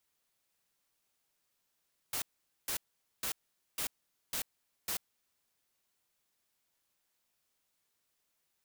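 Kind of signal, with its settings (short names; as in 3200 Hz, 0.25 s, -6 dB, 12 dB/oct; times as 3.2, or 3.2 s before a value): noise bursts white, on 0.09 s, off 0.46 s, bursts 6, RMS -35.5 dBFS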